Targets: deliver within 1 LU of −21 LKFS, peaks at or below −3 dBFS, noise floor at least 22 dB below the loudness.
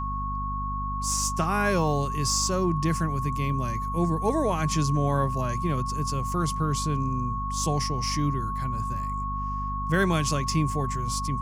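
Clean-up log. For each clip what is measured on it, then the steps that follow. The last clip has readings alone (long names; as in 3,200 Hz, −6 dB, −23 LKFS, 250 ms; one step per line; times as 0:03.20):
mains hum 50 Hz; hum harmonics up to 250 Hz; level of the hum −30 dBFS; interfering tone 1,100 Hz; level of the tone −30 dBFS; integrated loudness −26.5 LKFS; sample peak −10.0 dBFS; target loudness −21.0 LKFS
→ hum removal 50 Hz, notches 5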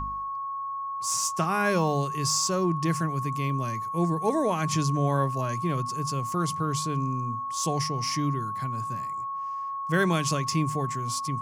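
mains hum none found; interfering tone 1,100 Hz; level of the tone −30 dBFS
→ notch filter 1,100 Hz, Q 30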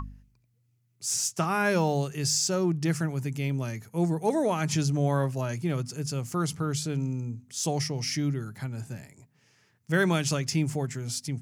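interfering tone none found; integrated loudness −28.5 LKFS; sample peak −11.5 dBFS; target loudness −21.0 LKFS
→ level +7.5 dB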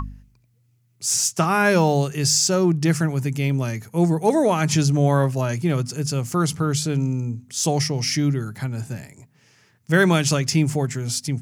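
integrated loudness −21.0 LKFS; sample peak −4.0 dBFS; background noise floor −62 dBFS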